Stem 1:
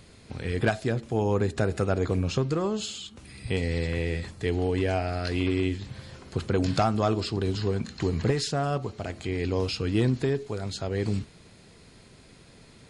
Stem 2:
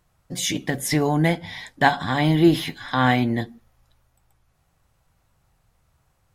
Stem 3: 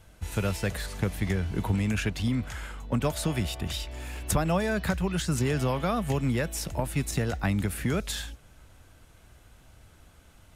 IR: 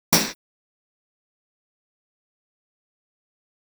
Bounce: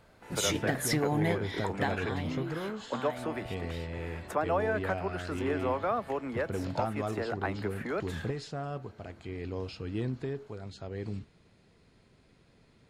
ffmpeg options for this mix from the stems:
-filter_complex "[0:a]highshelf=f=5100:g=-12,volume=0.335[s0];[1:a]acompressor=threshold=0.1:ratio=6,volume=0.562,afade=t=out:st=1.57:d=0.69:silence=0.251189[s1];[2:a]highpass=160,acrossover=split=310 2000:gain=0.0794 1 0.1[s2][s3][s4];[s2][s3][s4]amix=inputs=3:normalize=0,volume=1.06[s5];[s0][s1][s5]amix=inputs=3:normalize=0"

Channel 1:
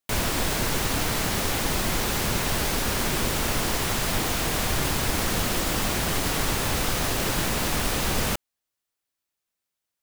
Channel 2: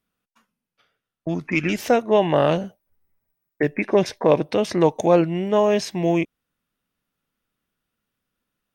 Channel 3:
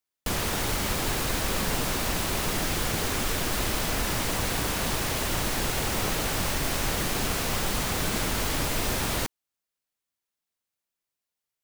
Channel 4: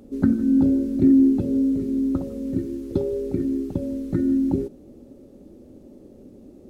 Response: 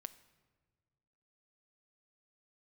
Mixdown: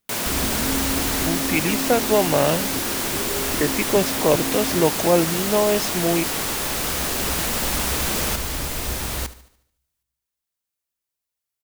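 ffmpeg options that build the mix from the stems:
-filter_complex "[0:a]highpass=180,volume=0.944[s0];[1:a]volume=0.841,asplit=2[s1][s2];[2:a]equalizer=f=63:t=o:w=0.24:g=15,volume=0.794,asplit=3[s3][s4][s5];[s4]volume=0.0708[s6];[s5]volume=0.168[s7];[3:a]acompressor=threshold=0.0794:ratio=6,adelay=200,volume=0.596[s8];[s2]apad=whole_len=513095[s9];[s3][s9]sidechaincompress=threshold=0.0282:ratio=8:attack=16:release=1280[s10];[4:a]atrim=start_sample=2205[s11];[s6][s11]afir=irnorm=-1:irlink=0[s12];[s7]aecho=0:1:73|146|219|292|365|438|511:1|0.48|0.23|0.111|0.0531|0.0255|0.0122[s13];[s0][s1][s10][s8][s12][s13]amix=inputs=6:normalize=0,highshelf=f=6000:g=5.5"

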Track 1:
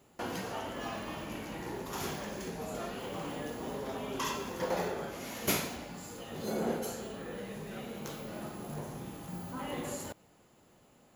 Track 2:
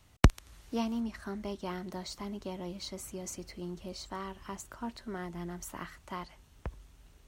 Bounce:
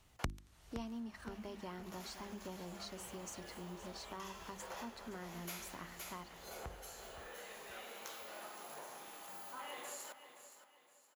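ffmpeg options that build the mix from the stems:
-filter_complex "[0:a]highpass=770,dynaudnorm=f=310:g=7:m=3.35,volume=0.282,asplit=2[s0][s1];[s1]volume=0.188[s2];[1:a]bandreject=f=50:t=h:w=6,bandreject=f=100:t=h:w=6,bandreject=f=150:t=h:w=6,bandreject=f=200:t=h:w=6,bandreject=f=250:t=h:w=6,bandreject=f=300:t=h:w=6,bandreject=f=350:t=h:w=6,volume=0.596,asplit=3[s3][s4][s5];[s4]volume=0.178[s6];[s5]apad=whole_len=491776[s7];[s0][s7]sidechaincompress=threshold=0.00316:ratio=8:attack=44:release=1130[s8];[s2][s6]amix=inputs=2:normalize=0,aecho=0:1:518|1036|1554|2072|2590:1|0.34|0.116|0.0393|0.0134[s9];[s8][s3][s9]amix=inputs=3:normalize=0,acompressor=threshold=0.00501:ratio=2"

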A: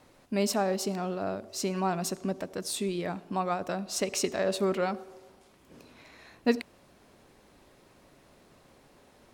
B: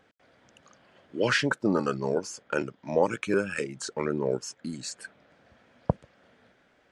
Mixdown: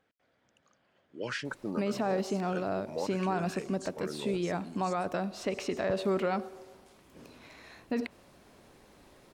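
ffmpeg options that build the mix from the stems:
-filter_complex "[0:a]acrossover=split=3400[s0][s1];[s1]acompressor=threshold=0.00282:ratio=4:attack=1:release=60[s2];[s0][s2]amix=inputs=2:normalize=0,adelay=1450,volume=1.12[s3];[1:a]volume=0.266[s4];[s3][s4]amix=inputs=2:normalize=0,alimiter=limit=0.0794:level=0:latency=1:release=32"

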